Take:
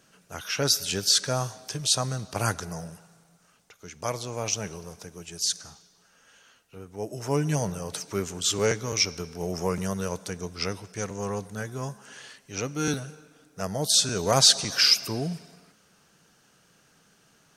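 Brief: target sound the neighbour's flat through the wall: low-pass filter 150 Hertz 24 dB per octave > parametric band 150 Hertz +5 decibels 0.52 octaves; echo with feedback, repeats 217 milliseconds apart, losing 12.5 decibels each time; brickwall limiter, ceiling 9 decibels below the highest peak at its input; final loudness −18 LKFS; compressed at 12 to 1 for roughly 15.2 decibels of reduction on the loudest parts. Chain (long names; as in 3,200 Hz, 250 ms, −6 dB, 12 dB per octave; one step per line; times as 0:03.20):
downward compressor 12 to 1, threshold −28 dBFS
brickwall limiter −24.5 dBFS
low-pass filter 150 Hz 24 dB per octave
parametric band 150 Hz +5 dB 0.52 octaves
repeating echo 217 ms, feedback 24%, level −12.5 dB
level +24.5 dB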